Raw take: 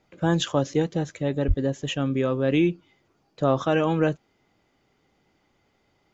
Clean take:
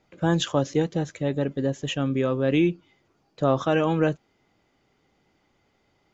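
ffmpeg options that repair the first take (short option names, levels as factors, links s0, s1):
-filter_complex "[0:a]asplit=3[s0][s1][s2];[s0]afade=t=out:st=1.47:d=0.02[s3];[s1]highpass=f=140:w=0.5412,highpass=f=140:w=1.3066,afade=t=in:st=1.47:d=0.02,afade=t=out:st=1.59:d=0.02[s4];[s2]afade=t=in:st=1.59:d=0.02[s5];[s3][s4][s5]amix=inputs=3:normalize=0"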